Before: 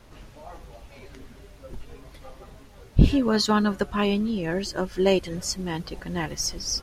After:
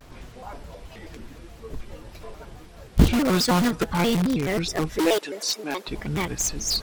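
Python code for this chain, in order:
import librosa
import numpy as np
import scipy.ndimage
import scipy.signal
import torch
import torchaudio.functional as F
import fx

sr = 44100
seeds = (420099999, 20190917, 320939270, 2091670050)

p1 = fx.highpass(x, sr, hz=320.0, slope=24, at=(4.99, 5.88))
p2 = (np.mod(10.0 ** (20.0 / 20.0) * p1 + 1.0, 2.0) - 1.0) / 10.0 ** (20.0 / 20.0)
p3 = p1 + (p2 * librosa.db_to_amplitude(-5.5))
y = fx.vibrato_shape(p3, sr, shape='square', rate_hz=4.7, depth_cents=250.0)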